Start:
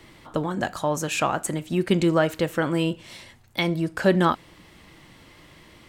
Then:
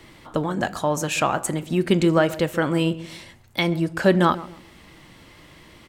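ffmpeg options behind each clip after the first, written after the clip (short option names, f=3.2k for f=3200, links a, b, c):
-filter_complex "[0:a]asplit=2[a][b];[b]adelay=134,lowpass=f=860:p=1,volume=-14.5dB,asplit=2[c][d];[d]adelay=134,lowpass=f=860:p=1,volume=0.35,asplit=2[e][f];[f]adelay=134,lowpass=f=860:p=1,volume=0.35[g];[a][c][e][g]amix=inputs=4:normalize=0,volume=2dB"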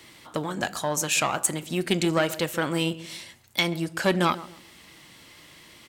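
-af "aeval=exprs='(tanh(2.51*val(0)+0.5)-tanh(0.5))/2.51':c=same,highpass=f=100:p=1,highshelf=f=2.3k:g=11,volume=-3.5dB"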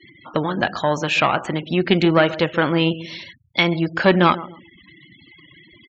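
-filter_complex "[0:a]acrossover=split=3900[a][b];[b]acompressor=threshold=-47dB:ratio=4:attack=1:release=60[c];[a][c]amix=inputs=2:normalize=0,lowpass=f=6.7k:w=0.5412,lowpass=f=6.7k:w=1.3066,afftfilt=real='re*gte(hypot(re,im),0.00708)':imag='im*gte(hypot(re,im),0.00708)':win_size=1024:overlap=0.75,volume=8dB"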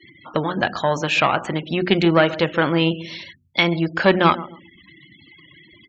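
-af "bandreject=f=60:t=h:w=6,bandreject=f=120:t=h:w=6,bandreject=f=180:t=h:w=6,bandreject=f=240:t=h:w=6,bandreject=f=300:t=h:w=6,bandreject=f=360:t=h:w=6"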